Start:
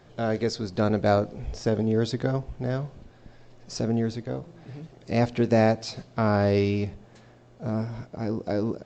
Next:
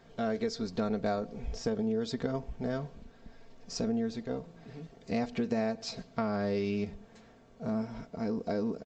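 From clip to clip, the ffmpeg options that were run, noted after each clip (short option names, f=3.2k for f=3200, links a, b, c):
-af "aecho=1:1:4.4:0.61,acompressor=threshold=-23dB:ratio=6,volume=-4.5dB"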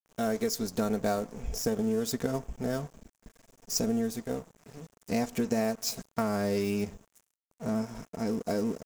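-af "aeval=exprs='sgn(val(0))*max(abs(val(0))-0.00335,0)':c=same,aexciter=amount=6.8:drive=3.8:freq=6k,volume=3dB"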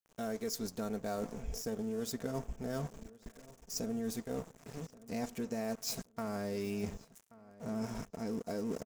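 -filter_complex "[0:a]areverse,acompressor=threshold=-37dB:ratio=6,areverse,asplit=2[a][b];[b]adelay=1130,lowpass=f=2.4k:p=1,volume=-19.5dB,asplit=2[c][d];[d]adelay=1130,lowpass=f=2.4k:p=1,volume=0.28[e];[a][c][e]amix=inputs=3:normalize=0,volume=2dB"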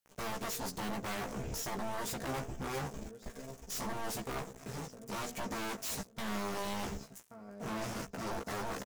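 -filter_complex "[0:a]aeval=exprs='0.0106*(abs(mod(val(0)/0.0106+3,4)-2)-1)':c=same,asplit=2[a][b];[b]adelay=15,volume=-4dB[c];[a][c]amix=inputs=2:normalize=0,volume=5.5dB"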